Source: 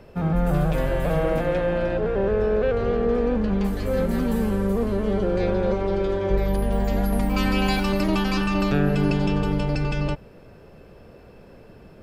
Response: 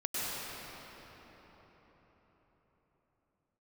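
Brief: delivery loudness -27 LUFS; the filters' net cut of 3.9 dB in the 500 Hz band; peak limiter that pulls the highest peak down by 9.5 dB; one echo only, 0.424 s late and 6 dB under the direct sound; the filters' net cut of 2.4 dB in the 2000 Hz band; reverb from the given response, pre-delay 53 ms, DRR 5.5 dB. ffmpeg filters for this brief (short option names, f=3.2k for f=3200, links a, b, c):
-filter_complex "[0:a]equalizer=f=500:t=o:g=-4.5,equalizer=f=2k:t=o:g=-3,alimiter=limit=-19.5dB:level=0:latency=1,aecho=1:1:424:0.501,asplit=2[a][b];[1:a]atrim=start_sample=2205,adelay=53[c];[b][c]afir=irnorm=-1:irlink=0,volume=-12.5dB[d];[a][d]amix=inputs=2:normalize=0"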